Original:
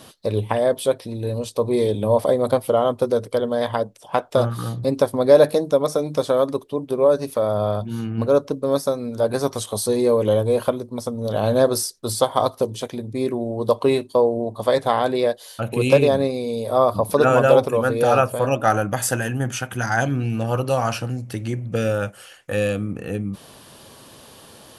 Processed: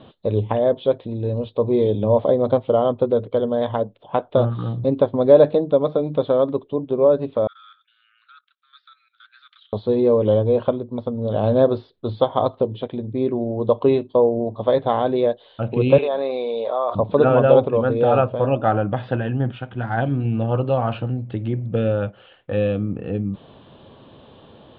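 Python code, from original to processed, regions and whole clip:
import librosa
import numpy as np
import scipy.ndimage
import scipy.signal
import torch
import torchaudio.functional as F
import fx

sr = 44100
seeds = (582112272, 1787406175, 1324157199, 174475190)

y = fx.chain(x, sr, fx.steep_highpass(hz=1300.0, slope=96),
    fx.level_steps(step_db=14), at=(7.47, 9.73))
y = fx.chain(y, sr, fx.highpass(hz=850.0, slope=12),
    fx.high_shelf(hz=2000.0, db=-7.0),
    fx.env_flatten(amount_pct=70), at=(15.98, 16.95))
y = fx.chain(y, sr, fx.law_mismatch(coded='mu'),
    fx.upward_expand(threshold_db=-29.0, expansion=1.5), at=(19.51, 20.25))
y = scipy.signal.sosfilt(scipy.signal.butter(12, 3700.0, 'lowpass', fs=sr, output='sos'), y)
y = fx.peak_eq(y, sr, hz=2000.0, db=-10.5, octaves=1.8)
y = y * 10.0 ** (2.5 / 20.0)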